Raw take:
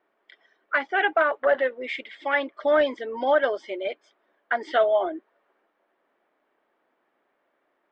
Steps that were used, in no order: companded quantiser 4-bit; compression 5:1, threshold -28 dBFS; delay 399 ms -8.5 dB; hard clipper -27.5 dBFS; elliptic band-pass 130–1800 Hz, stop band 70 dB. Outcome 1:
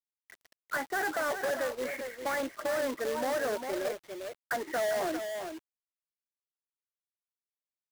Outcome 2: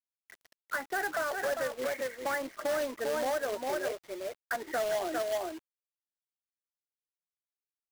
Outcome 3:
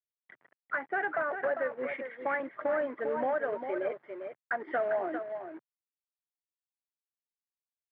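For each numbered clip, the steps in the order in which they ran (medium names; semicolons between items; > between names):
hard clipper > delay > compression > elliptic band-pass > companded quantiser; delay > compression > hard clipper > elliptic band-pass > companded quantiser; compression > delay > hard clipper > companded quantiser > elliptic band-pass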